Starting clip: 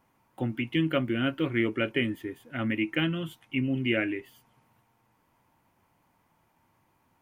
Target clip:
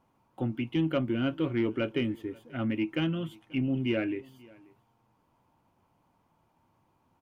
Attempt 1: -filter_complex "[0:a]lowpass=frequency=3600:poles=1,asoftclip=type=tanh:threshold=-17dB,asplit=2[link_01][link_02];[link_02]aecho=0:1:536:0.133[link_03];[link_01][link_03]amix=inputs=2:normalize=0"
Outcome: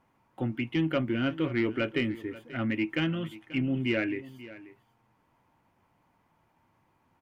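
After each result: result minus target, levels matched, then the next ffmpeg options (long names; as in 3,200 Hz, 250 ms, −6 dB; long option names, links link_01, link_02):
echo-to-direct +7.5 dB; 2,000 Hz band +4.5 dB
-filter_complex "[0:a]lowpass=frequency=3600:poles=1,asoftclip=type=tanh:threshold=-17dB,asplit=2[link_01][link_02];[link_02]aecho=0:1:536:0.0562[link_03];[link_01][link_03]amix=inputs=2:normalize=0"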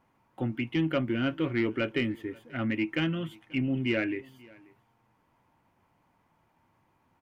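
2,000 Hz band +4.5 dB
-filter_complex "[0:a]lowpass=frequency=3600:poles=1,equalizer=frequency=1900:width=2:gain=-8.5,asoftclip=type=tanh:threshold=-17dB,asplit=2[link_01][link_02];[link_02]aecho=0:1:536:0.0562[link_03];[link_01][link_03]amix=inputs=2:normalize=0"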